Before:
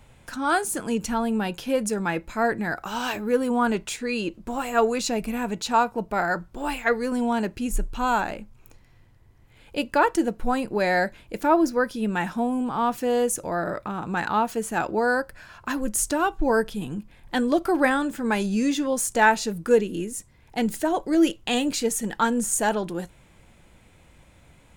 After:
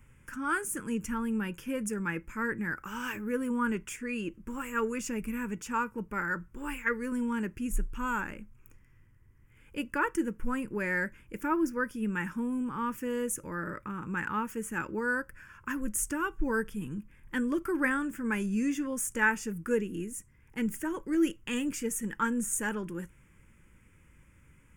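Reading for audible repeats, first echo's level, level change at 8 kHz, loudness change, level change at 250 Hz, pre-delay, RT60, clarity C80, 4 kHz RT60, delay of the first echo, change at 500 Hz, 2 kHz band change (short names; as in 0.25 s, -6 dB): none, none, -7.5 dB, -8.0 dB, -6.5 dB, none, none, none, none, none, -11.5 dB, -5.0 dB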